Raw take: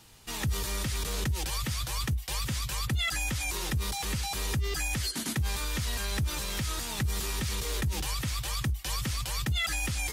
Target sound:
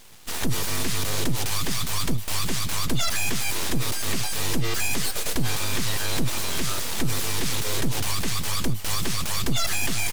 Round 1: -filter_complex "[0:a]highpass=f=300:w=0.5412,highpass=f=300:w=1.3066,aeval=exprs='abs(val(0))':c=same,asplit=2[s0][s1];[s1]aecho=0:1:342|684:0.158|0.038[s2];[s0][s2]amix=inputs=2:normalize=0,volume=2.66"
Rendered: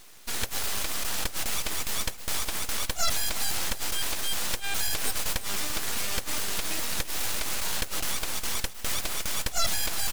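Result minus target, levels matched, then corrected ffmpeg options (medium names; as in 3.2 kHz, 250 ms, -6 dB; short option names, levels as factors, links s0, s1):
250 Hz band -9.5 dB
-filter_complex "[0:a]aeval=exprs='abs(val(0))':c=same,asplit=2[s0][s1];[s1]aecho=0:1:342|684:0.158|0.038[s2];[s0][s2]amix=inputs=2:normalize=0,volume=2.66"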